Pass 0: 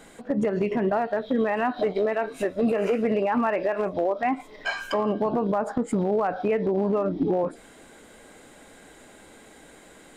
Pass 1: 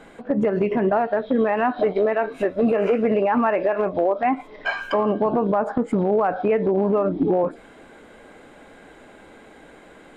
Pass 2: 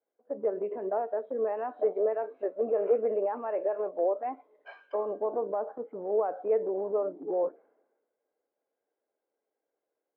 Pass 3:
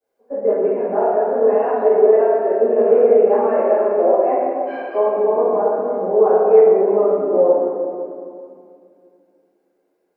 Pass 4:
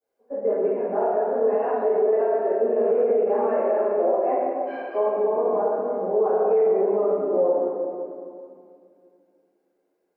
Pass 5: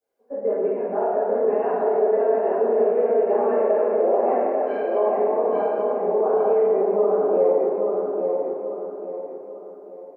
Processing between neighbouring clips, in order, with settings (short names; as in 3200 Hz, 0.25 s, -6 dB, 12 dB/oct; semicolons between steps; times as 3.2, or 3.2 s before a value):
tone controls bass -2 dB, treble -15 dB; notch 1900 Hz, Q 23; gain +4.5 dB
ladder band-pass 570 Hz, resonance 40%; three-band expander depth 100%
reverb RT60 2.3 s, pre-delay 3 ms, DRR -16 dB; gain -2.5 dB
limiter -8 dBFS, peak gain reduction 6.5 dB; gain -5 dB
feedback echo 0.842 s, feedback 38%, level -4 dB